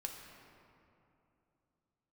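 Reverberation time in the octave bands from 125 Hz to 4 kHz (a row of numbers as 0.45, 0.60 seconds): 3.5, 3.4, 3.0, 2.7, 2.1, 1.5 seconds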